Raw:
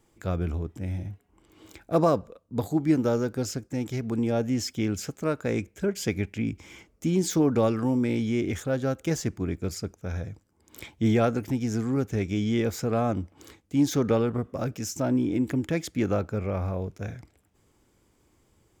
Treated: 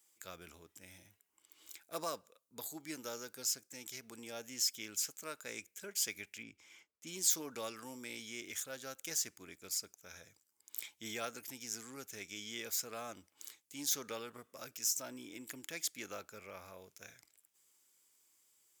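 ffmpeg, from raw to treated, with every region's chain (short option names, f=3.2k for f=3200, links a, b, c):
-filter_complex "[0:a]asettb=1/sr,asplit=3[a][b][c];[a]atrim=end=6.434[d];[b]atrim=start=6.43:end=7.07,asetpts=PTS-STARTPTS,afade=t=in:d=0.004:c=qsin,afade=t=out:st=0.636:d=0.004:c=qsin,lowpass=f=2k:p=1,acompressor=mode=upward:threshold=-50dB:ratio=2.5:attack=3.2:release=140:knee=2.83:detection=peak,agate=range=-33dB:threshold=-51dB:ratio=3:release=100:detection=peak[e];[c]atrim=start=7.066[f];[d][e]acrossfade=d=0.004:c1=hsin:c2=qsin[g];[g][f]acrossfade=d=0.004:c1=qsin:c2=hsin,aderivative,bandreject=f=750:w=12,volume=2.5dB"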